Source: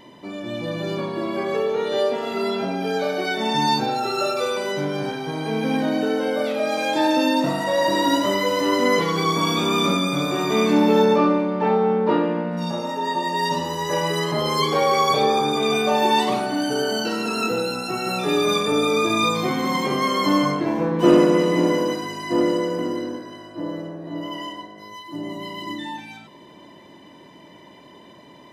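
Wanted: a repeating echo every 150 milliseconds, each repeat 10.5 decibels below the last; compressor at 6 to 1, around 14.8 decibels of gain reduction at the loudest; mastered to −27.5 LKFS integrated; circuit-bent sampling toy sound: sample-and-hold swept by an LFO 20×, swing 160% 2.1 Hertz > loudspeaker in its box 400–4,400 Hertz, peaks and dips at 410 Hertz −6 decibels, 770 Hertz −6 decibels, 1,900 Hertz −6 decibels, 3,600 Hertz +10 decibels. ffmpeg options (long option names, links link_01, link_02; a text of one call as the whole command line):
ffmpeg -i in.wav -af "acompressor=threshold=-26dB:ratio=6,aecho=1:1:150|300|450:0.299|0.0896|0.0269,acrusher=samples=20:mix=1:aa=0.000001:lfo=1:lforange=32:lforate=2.1,highpass=400,equalizer=frequency=410:width_type=q:width=4:gain=-6,equalizer=frequency=770:width_type=q:width=4:gain=-6,equalizer=frequency=1900:width_type=q:width=4:gain=-6,equalizer=frequency=3600:width_type=q:width=4:gain=10,lowpass=frequency=4400:width=0.5412,lowpass=frequency=4400:width=1.3066,volume=4.5dB" out.wav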